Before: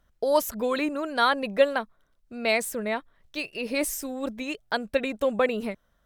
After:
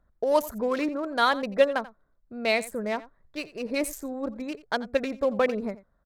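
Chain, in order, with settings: Wiener smoothing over 15 samples; on a send: echo 87 ms -18 dB

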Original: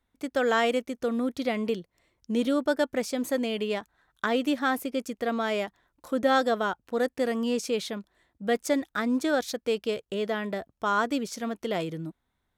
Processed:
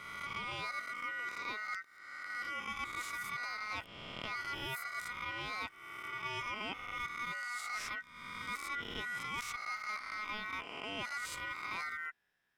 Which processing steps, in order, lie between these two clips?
spectral swells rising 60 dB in 0.82 s; reverse; compressor 6:1, threshold -33 dBFS, peak gain reduction 15.5 dB; reverse; ring modulator 1700 Hz; gain -2.5 dB

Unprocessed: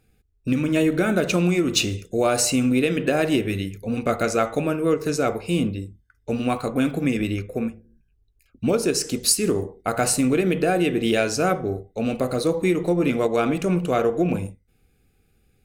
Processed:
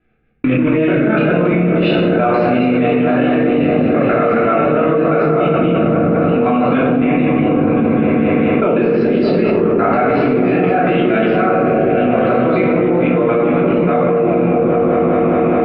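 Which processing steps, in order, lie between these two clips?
local time reversal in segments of 0.146 s; tilt +3.5 dB/oct; expander -37 dBFS; Gaussian blur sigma 4.4 samples; bell 100 Hz -9 dB 0.26 oct; on a send: repeats that get brighter 0.205 s, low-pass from 200 Hz, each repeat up 1 oct, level 0 dB; on the sum: shoebox room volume 420 m³, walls mixed, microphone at 3 m; fast leveller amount 100%; gain -3.5 dB

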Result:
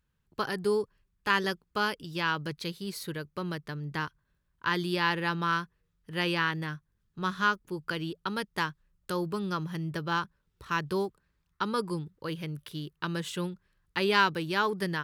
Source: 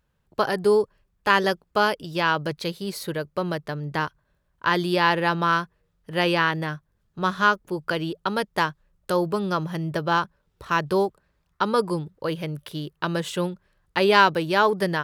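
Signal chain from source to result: bell 640 Hz -10.5 dB 0.89 oct; gain -5 dB

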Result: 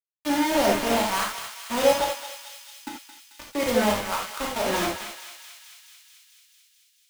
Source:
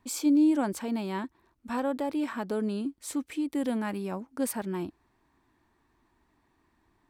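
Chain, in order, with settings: regenerating reverse delay 0.253 s, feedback 53%, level -13 dB; wah 1 Hz 520–1400 Hz, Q 2.7; in parallel at -3 dB: negative-ratio compressor -42 dBFS, ratio -0.5; 2.04–3.37 on the sum: vowel filter u; requantised 6-bit, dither none; thinning echo 0.22 s, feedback 83%, high-pass 1100 Hz, level -7.5 dB; non-linear reverb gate 0.11 s flat, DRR -2.5 dB; three-band expander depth 40%; gain +7.5 dB

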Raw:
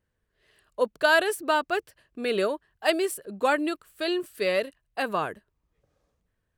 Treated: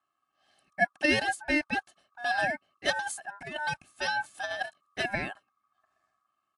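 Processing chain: comb 2.1 ms, depth 87%; 2.96–5.15 negative-ratio compressor -24 dBFS, ratio -0.5; ring modulator 1200 Hz; gain -3 dB; MP3 64 kbps 24000 Hz

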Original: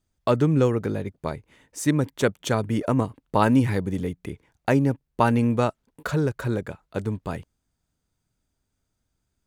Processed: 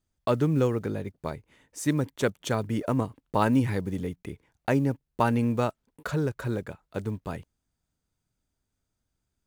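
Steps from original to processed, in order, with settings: block floating point 7-bit; gain -4 dB

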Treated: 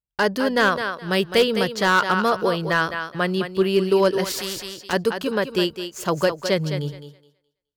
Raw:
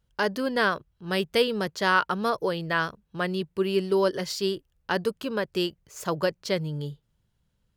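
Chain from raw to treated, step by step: gate -48 dBFS, range -29 dB; thinning echo 0.21 s, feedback 21%, high-pass 280 Hz, level -8 dB; hard clip -16 dBFS, distortion -20 dB; 4.24–4.93 spectral compressor 2:1; gain +5.5 dB

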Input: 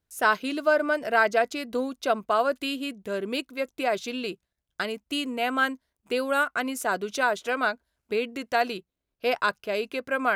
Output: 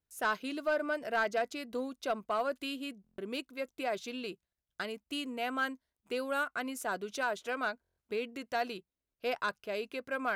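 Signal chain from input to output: soft clip -13.5 dBFS, distortion -20 dB; stuck buffer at 3.02/7.82, samples 1024, times 6; gain -8 dB

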